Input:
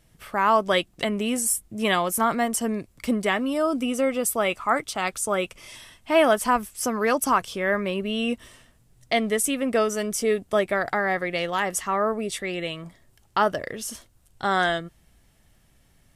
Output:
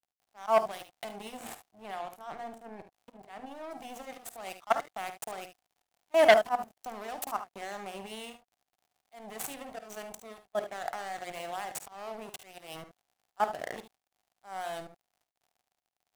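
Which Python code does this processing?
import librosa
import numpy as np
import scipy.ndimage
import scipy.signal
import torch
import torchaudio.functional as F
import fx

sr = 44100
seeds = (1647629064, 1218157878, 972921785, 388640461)

y = scipy.ndimage.median_filter(x, 9, mode='constant')
y = fx.level_steps(y, sr, step_db=19)
y = scipy.signal.sosfilt(scipy.signal.butter(2, 95.0, 'highpass', fs=sr, output='sos'), y)
y = fx.hum_notches(y, sr, base_hz=60, count=9)
y = np.sign(y) * np.maximum(np.abs(y) - 10.0 ** (-40.5 / 20.0), 0.0)
y = fx.auto_swell(y, sr, attack_ms=183.0)
y = fx.high_shelf(y, sr, hz=4300.0, db=fx.steps((0.0, 10.0), (1.36, -2.5), (3.7, 9.5)))
y = fx.dmg_crackle(y, sr, seeds[0], per_s=56.0, level_db=-57.0)
y = fx.peak_eq(y, sr, hz=740.0, db=13.5, octaves=0.42)
y = fx.room_early_taps(y, sr, ms=(51, 73), db=(-13.0, -12.0))
y = fx.transformer_sat(y, sr, knee_hz=1900.0)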